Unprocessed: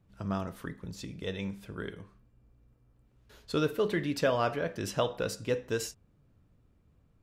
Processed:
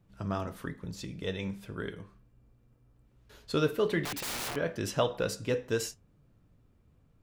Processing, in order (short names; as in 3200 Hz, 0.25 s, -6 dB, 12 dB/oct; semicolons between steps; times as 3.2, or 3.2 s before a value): flange 0.95 Hz, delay 5.6 ms, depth 3.1 ms, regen -72%; 4.05–4.56 wrapped overs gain 36.5 dB; gain +5.5 dB